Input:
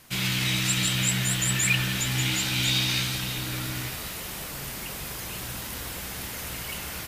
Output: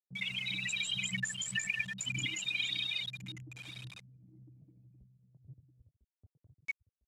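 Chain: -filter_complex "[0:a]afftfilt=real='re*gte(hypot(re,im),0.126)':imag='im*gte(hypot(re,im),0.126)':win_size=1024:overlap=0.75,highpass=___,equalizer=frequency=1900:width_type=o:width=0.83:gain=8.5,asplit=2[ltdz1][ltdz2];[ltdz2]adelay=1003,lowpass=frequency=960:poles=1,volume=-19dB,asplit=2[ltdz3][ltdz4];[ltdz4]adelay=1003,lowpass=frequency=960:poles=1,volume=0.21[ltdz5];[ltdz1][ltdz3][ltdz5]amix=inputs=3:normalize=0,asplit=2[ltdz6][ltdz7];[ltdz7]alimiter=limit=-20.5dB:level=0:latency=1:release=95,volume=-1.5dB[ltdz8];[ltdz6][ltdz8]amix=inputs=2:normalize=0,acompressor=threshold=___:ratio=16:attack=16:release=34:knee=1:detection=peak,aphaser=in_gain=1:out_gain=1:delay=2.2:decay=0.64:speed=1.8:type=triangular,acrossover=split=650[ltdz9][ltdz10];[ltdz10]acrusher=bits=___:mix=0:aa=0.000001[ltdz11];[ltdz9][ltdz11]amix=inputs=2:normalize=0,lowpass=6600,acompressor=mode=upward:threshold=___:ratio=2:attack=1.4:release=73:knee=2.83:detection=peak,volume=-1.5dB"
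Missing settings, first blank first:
430, -37dB, 7, -40dB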